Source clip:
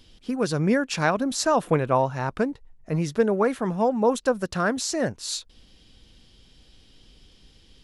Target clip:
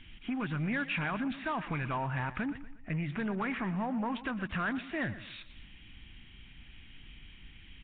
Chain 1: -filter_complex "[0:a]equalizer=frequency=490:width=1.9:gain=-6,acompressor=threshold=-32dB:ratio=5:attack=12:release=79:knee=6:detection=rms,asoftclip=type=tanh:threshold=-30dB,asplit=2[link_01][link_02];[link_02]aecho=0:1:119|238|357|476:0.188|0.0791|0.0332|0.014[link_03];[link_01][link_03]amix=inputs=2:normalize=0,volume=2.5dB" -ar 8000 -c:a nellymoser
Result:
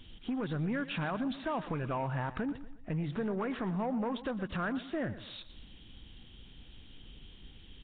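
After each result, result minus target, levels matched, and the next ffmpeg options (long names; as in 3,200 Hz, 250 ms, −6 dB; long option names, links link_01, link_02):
2,000 Hz band −5.0 dB; 500 Hz band +5.0 dB
-filter_complex "[0:a]equalizer=frequency=490:width=1.9:gain=-6,acompressor=threshold=-32dB:ratio=5:attack=12:release=79:knee=6:detection=rms,lowpass=frequency=2300:width_type=q:width=3,asoftclip=type=tanh:threshold=-30dB,asplit=2[link_01][link_02];[link_02]aecho=0:1:119|238|357|476:0.188|0.0791|0.0332|0.014[link_03];[link_01][link_03]amix=inputs=2:normalize=0,volume=2.5dB" -ar 8000 -c:a nellymoser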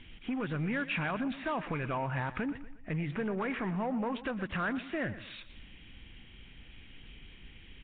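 500 Hz band +4.0 dB
-filter_complex "[0:a]equalizer=frequency=490:width=1.9:gain=-15.5,acompressor=threshold=-32dB:ratio=5:attack=12:release=79:knee=6:detection=rms,lowpass=frequency=2300:width_type=q:width=3,asoftclip=type=tanh:threshold=-30dB,asplit=2[link_01][link_02];[link_02]aecho=0:1:119|238|357|476:0.188|0.0791|0.0332|0.014[link_03];[link_01][link_03]amix=inputs=2:normalize=0,volume=2.5dB" -ar 8000 -c:a nellymoser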